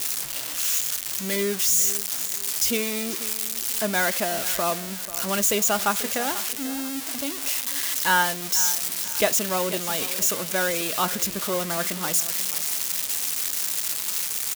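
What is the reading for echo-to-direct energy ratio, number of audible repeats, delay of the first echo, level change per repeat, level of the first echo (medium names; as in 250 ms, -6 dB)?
-14.5 dB, 2, 489 ms, -9.5 dB, -15.0 dB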